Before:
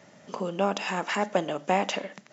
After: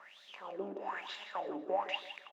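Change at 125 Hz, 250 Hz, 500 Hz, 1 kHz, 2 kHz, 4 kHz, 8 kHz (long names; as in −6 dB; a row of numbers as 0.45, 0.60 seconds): below −20 dB, −14.5 dB, −11.0 dB, −10.5 dB, −11.5 dB, −7.5 dB, can't be measured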